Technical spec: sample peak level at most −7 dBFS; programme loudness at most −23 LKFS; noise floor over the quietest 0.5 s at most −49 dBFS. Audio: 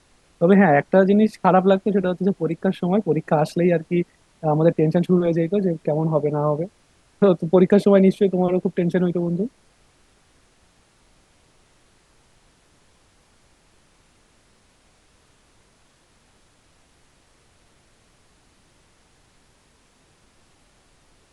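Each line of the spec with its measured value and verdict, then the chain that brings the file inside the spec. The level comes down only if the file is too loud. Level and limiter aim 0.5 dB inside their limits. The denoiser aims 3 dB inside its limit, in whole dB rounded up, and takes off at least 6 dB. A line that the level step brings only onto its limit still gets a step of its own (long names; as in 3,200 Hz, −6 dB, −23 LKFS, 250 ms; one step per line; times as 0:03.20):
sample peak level −3.0 dBFS: out of spec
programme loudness −19.5 LKFS: out of spec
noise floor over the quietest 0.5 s −59 dBFS: in spec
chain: level −4 dB
brickwall limiter −7.5 dBFS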